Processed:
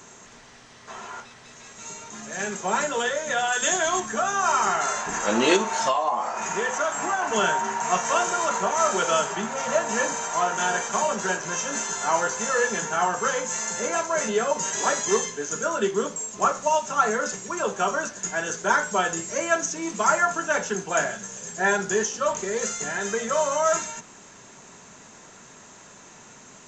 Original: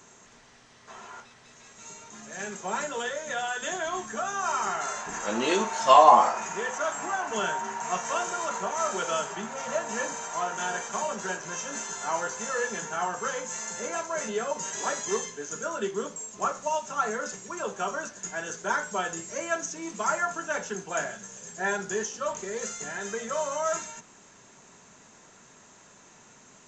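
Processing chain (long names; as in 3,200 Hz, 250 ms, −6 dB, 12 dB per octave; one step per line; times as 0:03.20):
0:03.52–0:04.00: high-shelf EQ 5,000 Hz +10 dB
0:05.56–0:07.22: downward compressor 12 to 1, threshold −27 dBFS, peak gain reduction 17.5 dB
level +6.5 dB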